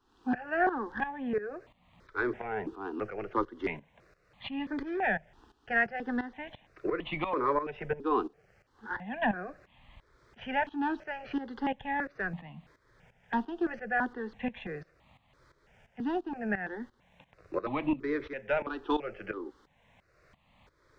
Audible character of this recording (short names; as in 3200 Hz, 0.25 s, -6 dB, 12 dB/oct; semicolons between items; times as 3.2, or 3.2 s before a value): tremolo saw up 2.9 Hz, depth 80%; notches that jump at a steady rate 3 Hz 580–1500 Hz